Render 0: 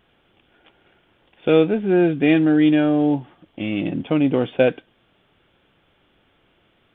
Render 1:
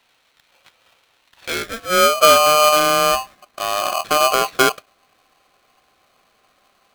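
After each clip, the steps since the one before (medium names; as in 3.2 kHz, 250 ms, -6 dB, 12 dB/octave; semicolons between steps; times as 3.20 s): high-pass sweep 1.9 kHz -> 120 Hz, 1.39–2.57 s; polarity switched at an audio rate 910 Hz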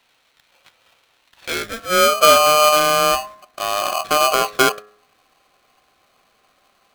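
de-hum 104.6 Hz, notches 19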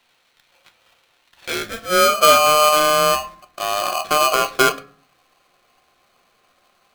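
reverberation RT60 0.40 s, pre-delay 6 ms, DRR 9 dB; trim -1 dB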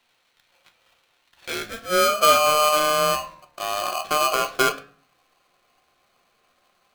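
flange 0.41 Hz, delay 8.2 ms, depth 6.8 ms, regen +87%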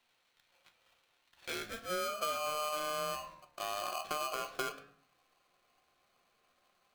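compression 5:1, threshold -26 dBFS, peak gain reduction 13 dB; trim -8.5 dB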